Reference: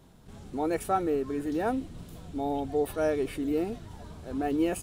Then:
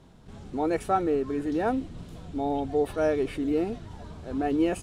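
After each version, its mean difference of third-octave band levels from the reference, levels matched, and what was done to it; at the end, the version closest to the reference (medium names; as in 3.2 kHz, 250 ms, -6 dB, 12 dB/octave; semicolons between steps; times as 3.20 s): 1.5 dB: distance through air 50 m; trim +2.5 dB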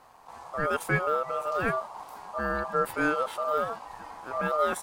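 8.5 dB: ring modulator 910 Hz; trim +3.5 dB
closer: first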